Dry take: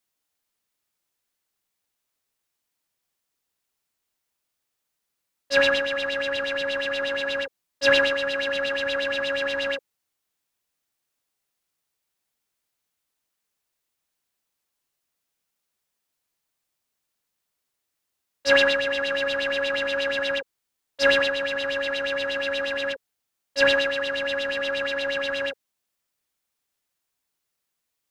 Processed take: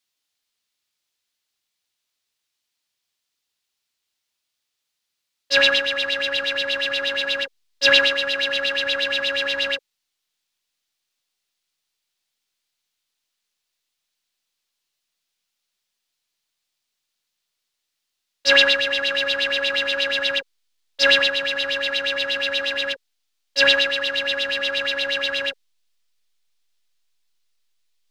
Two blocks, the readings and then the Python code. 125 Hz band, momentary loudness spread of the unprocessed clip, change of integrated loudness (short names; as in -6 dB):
n/a, 9 LU, +4.5 dB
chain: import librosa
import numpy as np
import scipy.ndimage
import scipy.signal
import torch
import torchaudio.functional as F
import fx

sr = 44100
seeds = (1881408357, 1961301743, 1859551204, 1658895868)

p1 = fx.peak_eq(x, sr, hz=3900.0, db=12.0, octaves=2.0)
p2 = fx.backlash(p1, sr, play_db=-23.5)
p3 = p1 + F.gain(torch.from_numpy(p2), -10.5).numpy()
y = F.gain(torch.from_numpy(p3), -4.5).numpy()